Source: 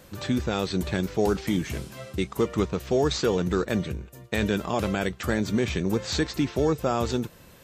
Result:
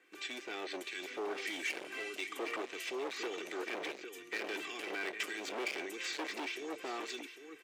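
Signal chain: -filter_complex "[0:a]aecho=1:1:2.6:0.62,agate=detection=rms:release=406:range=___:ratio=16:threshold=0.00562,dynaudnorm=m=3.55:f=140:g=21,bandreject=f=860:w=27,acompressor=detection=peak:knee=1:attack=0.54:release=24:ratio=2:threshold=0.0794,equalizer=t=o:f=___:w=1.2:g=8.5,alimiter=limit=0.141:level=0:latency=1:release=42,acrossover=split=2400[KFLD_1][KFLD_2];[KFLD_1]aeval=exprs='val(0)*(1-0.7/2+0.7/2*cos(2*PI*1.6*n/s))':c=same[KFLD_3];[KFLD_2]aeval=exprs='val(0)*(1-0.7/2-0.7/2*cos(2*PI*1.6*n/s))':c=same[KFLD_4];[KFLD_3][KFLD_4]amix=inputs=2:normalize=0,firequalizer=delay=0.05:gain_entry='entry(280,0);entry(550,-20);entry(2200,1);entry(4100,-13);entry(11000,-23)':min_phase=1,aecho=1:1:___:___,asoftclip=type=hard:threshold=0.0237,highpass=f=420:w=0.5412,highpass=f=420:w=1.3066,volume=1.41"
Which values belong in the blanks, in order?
0.447, 9200, 803, 0.282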